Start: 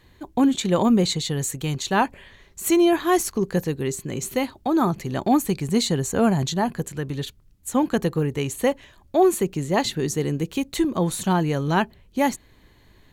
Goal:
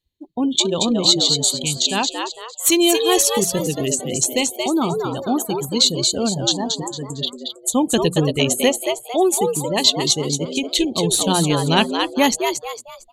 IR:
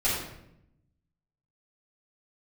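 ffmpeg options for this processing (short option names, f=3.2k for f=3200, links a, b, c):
-filter_complex "[0:a]highshelf=f=2.3k:t=q:w=1.5:g=11,bandreject=f=60:t=h:w=6,bandreject=f=120:t=h:w=6,bandreject=f=180:t=h:w=6,asplit=2[a][b];[b]adynamicsmooth=sensitivity=3:basefreq=870,volume=1dB[c];[a][c]amix=inputs=2:normalize=0,equalizer=f=13k:t=o:w=2.2:g=4.5,dynaudnorm=f=300:g=7:m=11.5dB,afftdn=nr=32:nf=-27,asplit=2[d][e];[e]asplit=4[f][g][h][i];[f]adelay=227,afreqshift=110,volume=-5dB[j];[g]adelay=454,afreqshift=220,volume=-14.1dB[k];[h]adelay=681,afreqshift=330,volume=-23.2dB[l];[i]adelay=908,afreqshift=440,volume=-32.4dB[m];[j][k][l][m]amix=inputs=4:normalize=0[n];[d][n]amix=inputs=2:normalize=0,volume=-1dB"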